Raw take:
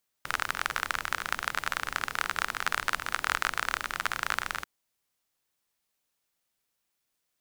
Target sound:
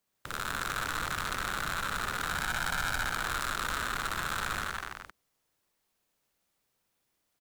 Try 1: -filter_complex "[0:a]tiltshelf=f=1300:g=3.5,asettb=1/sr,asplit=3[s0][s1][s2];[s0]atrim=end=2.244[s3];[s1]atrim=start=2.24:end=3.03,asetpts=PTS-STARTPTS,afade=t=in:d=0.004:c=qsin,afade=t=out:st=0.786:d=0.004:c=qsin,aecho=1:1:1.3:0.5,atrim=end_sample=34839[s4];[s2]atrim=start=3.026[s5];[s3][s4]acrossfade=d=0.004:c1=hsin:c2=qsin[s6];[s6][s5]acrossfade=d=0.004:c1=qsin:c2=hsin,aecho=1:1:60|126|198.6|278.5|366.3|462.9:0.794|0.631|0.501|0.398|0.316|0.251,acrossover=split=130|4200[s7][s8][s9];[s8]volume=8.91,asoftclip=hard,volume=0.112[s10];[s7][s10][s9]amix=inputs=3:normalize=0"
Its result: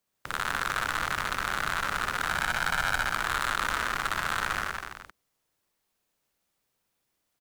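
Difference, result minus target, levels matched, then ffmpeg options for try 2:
overload inside the chain: distortion -7 dB
-filter_complex "[0:a]tiltshelf=f=1300:g=3.5,asettb=1/sr,asplit=3[s0][s1][s2];[s0]atrim=end=2.244[s3];[s1]atrim=start=2.24:end=3.03,asetpts=PTS-STARTPTS,afade=t=in:d=0.004:c=qsin,afade=t=out:st=0.786:d=0.004:c=qsin,aecho=1:1:1.3:0.5,atrim=end_sample=34839[s4];[s2]atrim=start=3.026[s5];[s3][s4]acrossfade=d=0.004:c1=hsin:c2=qsin[s6];[s6][s5]acrossfade=d=0.004:c1=qsin:c2=hsin,aecho=1:1:60|126|198.6|278.5|366.3|462.9:0.794|0.631|0.501|0.398|0.316|0.251,acrossover=split=130|4200[s7][s8][s9];[s8]volume=23.7,asoftclip=hard,volume=0.0422[s10];[s7][s10][s9]amix=inputs=3:normalize=0"

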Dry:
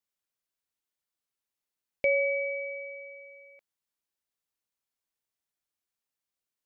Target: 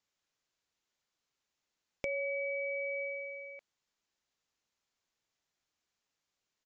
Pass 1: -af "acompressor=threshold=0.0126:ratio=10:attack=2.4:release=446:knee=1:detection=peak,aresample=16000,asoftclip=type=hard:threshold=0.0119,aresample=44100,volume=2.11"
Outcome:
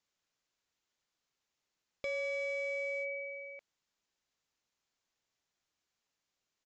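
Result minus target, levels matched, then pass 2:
hard clipper: distortion +8 dB
-af "acompressor=threshold=0.0126:ratio=10:attack=2.4:release=446:knee=1:detection=peak,aresample=16000,asoftclip=type=hard:threshold=0.0376,aresample=44100,volume=2.11"

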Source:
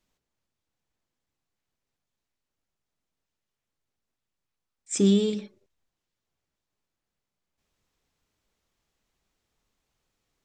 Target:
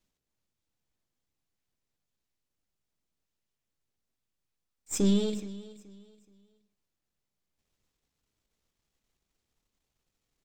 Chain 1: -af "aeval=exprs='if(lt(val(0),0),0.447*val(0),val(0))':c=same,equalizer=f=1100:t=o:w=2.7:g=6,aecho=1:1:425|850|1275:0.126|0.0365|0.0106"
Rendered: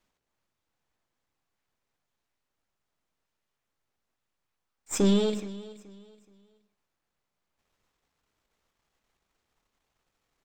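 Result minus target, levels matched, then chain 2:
1 kHz band +7.0 dB
-af "aeval=exprs='if(lt(val(0),0),0.447*val(0),val(0))':c=same,equalizer=f=1100:t=o:w=2.7:g=-4,aecho=1:1:425|850|1275:0.126|0.0365|0.0106"

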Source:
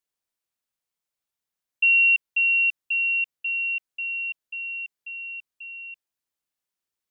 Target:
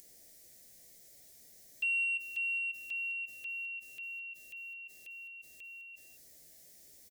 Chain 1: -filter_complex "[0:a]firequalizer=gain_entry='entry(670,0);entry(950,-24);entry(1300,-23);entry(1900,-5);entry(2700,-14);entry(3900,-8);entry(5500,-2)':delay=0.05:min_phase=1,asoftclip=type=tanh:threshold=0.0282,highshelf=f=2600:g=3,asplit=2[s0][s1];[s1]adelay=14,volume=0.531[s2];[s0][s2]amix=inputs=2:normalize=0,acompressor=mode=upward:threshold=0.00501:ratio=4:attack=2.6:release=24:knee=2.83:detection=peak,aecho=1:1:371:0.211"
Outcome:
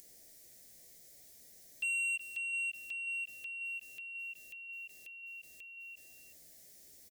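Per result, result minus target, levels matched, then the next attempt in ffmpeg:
echo 161 ms late; saturation: distortion +18 dB
-filter_complex "[0:a]firequalizer=gain_entry='entry(670,0);entry(950,-24);entry(1300,-23);entry(1900,-5);entry(2700,-14);entry(3900,-8);entry(5500,-2)':delay=0.05:min_phase=1,asoftclip=type=tanh:threshold=0.0282,highshelf=f=2600:g=3,asplit=2[s0][s1];[s1]adelay=14,volume=0.531[s2];[s0][s2]amix=inputs=2:normalize=0,acompressor=mode=upward:threshold=0.00501:ratio=4:attack=2.6:release=24:knee=2.83:detection=peak,aecho=1:1:210:0.211"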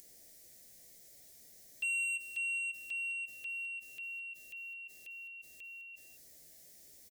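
saturation: distortion +18 dB
-filter_complex "[0:a]firequalizer=gain_entry='entry(670,0);entry(950,-24);entry(1300,-23);entry(1900,-5);entry(2700,-14);entry(3900,-8);entry(5500,-2)':delay=0.05:min_phase=1,asoftclip=type=tanh:threshold=0.0944,highshelf=f=2600:g=3,asplit=2[s0][s1];[s1]adelay=14,volume=0.531[s2];[s0][s2]amix=inputs=2:normalize=0,acompressor=mode=upward:threshold=0.00501:ratio=4:attack=2.6:release=24:knee=2.83:detection=peak,aecho=1:1:210:0.211"

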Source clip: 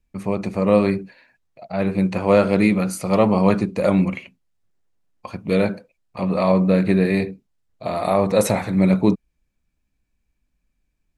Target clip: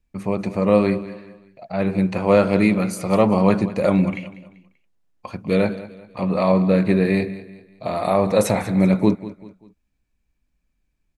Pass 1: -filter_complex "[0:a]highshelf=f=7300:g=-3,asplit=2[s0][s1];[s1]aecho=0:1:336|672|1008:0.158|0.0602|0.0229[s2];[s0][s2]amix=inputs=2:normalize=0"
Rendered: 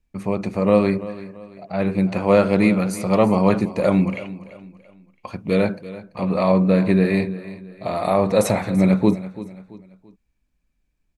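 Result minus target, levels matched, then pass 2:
echo 142 ms late
-filter_complex "[0:a]highshelf=f=7300:g=-3,asplit=2[s0][s1];[s1]aecho=0:1:194|388|582:0.158|0.0602|0.0229[s2];[s0][s2]amix=inputs=2:normalize=0"

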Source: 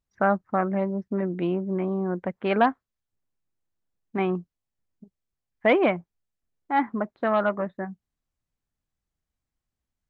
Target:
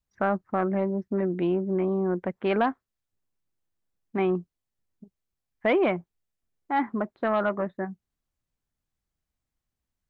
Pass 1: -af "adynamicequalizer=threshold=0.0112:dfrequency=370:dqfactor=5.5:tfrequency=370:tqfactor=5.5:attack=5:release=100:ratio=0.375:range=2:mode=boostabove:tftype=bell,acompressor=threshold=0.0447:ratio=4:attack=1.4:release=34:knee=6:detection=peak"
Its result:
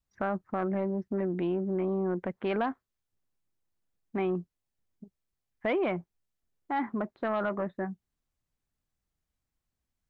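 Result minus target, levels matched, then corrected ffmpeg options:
compression: peak gain reduction +6.5 dB
-af "adynamicequalizer=threshold=0.0112:dfrequency=370:dqfactor=5.5:tfrequency=370:tqfactor=5.5:attack=5:release=100:ratio=0.375:range=2:mode=boostabove:tftype=bell,acompressor=threshold=0.119:ratio=4:attack=1.4:release=34:knee=6:detection=peak"

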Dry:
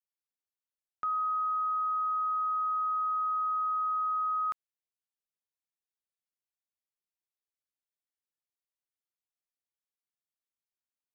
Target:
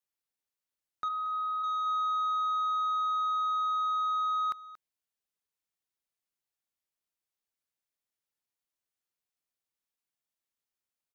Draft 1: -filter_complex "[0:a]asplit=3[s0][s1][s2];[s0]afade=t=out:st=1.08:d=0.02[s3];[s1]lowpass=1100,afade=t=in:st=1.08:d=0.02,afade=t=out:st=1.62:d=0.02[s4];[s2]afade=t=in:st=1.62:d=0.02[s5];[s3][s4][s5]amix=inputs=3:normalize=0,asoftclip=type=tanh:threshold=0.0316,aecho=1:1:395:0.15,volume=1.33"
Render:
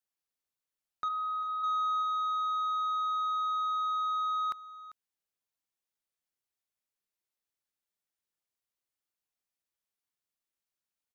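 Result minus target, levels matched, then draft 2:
echo 164 ms late
-filter_complex "[0:a]asplit=3[s0][s1][s2];[s0]afade=t=out:st=1.08:d=0.02[s3];[s1]lowpass=1100,afade=t=in:st=1.08:d=0.02,afade=t=out:st=1.62:d=0.02[s4];[s2]afade=t=in:st=1.62:d=0.02[s5];[s3][s4][s5]amix=inputs=3:normalize=0,asoftclip=type=tanh:threshold=0.0316,aecho=1:1:231:0.15,volume=1.33"

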